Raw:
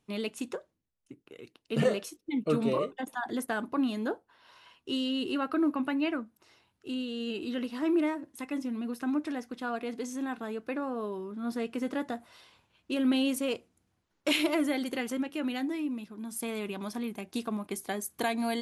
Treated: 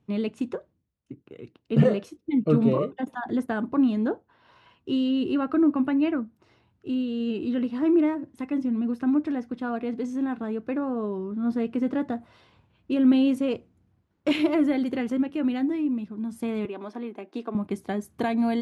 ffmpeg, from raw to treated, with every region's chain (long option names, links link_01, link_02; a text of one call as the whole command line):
ffmpeg -i in.wav -filter_complex "[0:a]asettb=1/sr,asplit=3[link_01][link_02][link_03];[link_01]atrim=end=16.654[link_04];[link_02]atrim=start=16.65:end=17.55,asetpts=PTS-STARTPTS,afade=type=in:duration=0.004:curve=qsin,afade=type=out:start_time=0.896:duration=0.004:curve=qsin,highpass=frequency=300:width=0.5412,highpass=frequency=300:width=1.3066,aemphasis=mode=reproduction:type=50kf[link_05];[link_03]atrim=start=17.546[link_06];[link_04][link_05]acrossfade=duration=0.004:curve1=hsin:curve2=qsin[link_07];[link_07][link_06]acrossfade=duration=0.004:curve1=qsin:curve2=hsin,highpass=87,aemphasis=mode=reproduction:type=riaa,volume=1.5dB" out.wav